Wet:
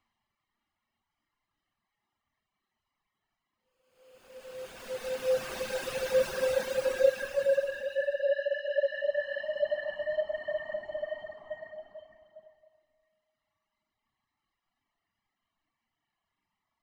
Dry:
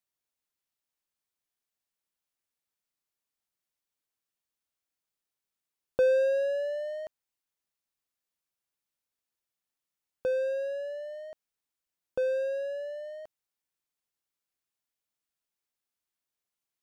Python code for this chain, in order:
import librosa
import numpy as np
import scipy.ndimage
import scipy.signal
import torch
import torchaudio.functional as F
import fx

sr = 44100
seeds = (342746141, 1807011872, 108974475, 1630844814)

p1 = scipy.signal.sosfilt(scipy.signal.butter(2, 2200.0, 'lowpass', fs=sr, output='sos'), x)
p2 = p1 + 0.72 * np.pad(p1, (int(1.0 * sr / 1000.0), 0))[:len(p1)]
p3 = fx.rev_schroeder(p2, sr, rt60_s=0.57, comb_ms=27, drr_db=-1.0)
p4 = fx.over_compress(p3, sr, threshold_db=-40.0, ratio=-1.0)
p5 = p3 + F.gain(torch.from_numpy(p4), 0.0).numpy()
p6 = (np.mod(10.0 ** (20.5 / 20.0) * p5 + 1.0, 2.0) - 1.0) / 10.0 ** (20.5 / 20.0)
p7 = fx.paulstretch(p6, sr, seeds[0], factor=4.3, window_s=1.0, from_s=4.62)
p8 = fx.dereverb_blind(p7, sr, rt60_s=1.9)
y = F.gain(torch.from_numpy(p8), 3.0).numpy()